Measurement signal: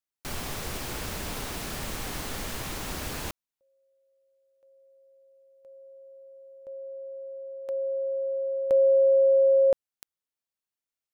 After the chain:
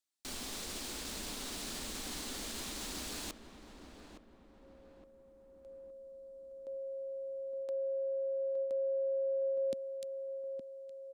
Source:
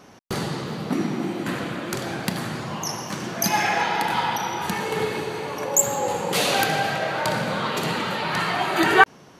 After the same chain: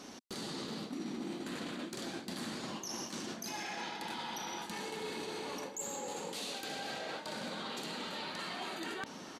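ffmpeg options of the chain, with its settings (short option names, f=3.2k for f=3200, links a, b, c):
-filter_complex "[0:a]equalizer=f=125:t=o:w=1:g=-11,equalizer=f=250:t=o:w=1:g=9,equalizer=f=4k:t=o:w=1:g=8,equalizer=f=8k:t=o:w=1:g=8,areverse,acompressor=threshold=-30dB:ratio=16:attack=0.3:release=182:detection=peak,areverse,asplit=2[a][b];[b]adelay=865,lowpass=f=1.3k:p=1,volume=-8dB,asplit=2[c][d];[d]adelay=865,lowpass=f=1.3k:p=1,volume=0.51,asplit=2[e][f];[f]adelay=865,lowpass=f=1.3k:p=1,volume=0.51,asplit=2[g][h];[h]adelay=865,lowpass=f=1.3k:p=1,volume=0.51,asplit=2[i][j];[j]adelay=865,lowpass=f=1.3k:p=1,volume=0.51,asplit=2[k][l];[l]adelay=865,lowpass=f=1.3k:p=1,volume=0.51[m];[a][c][e][g][i][k][m]amix=inputs=7:normalize=0,volume=-4.5dB"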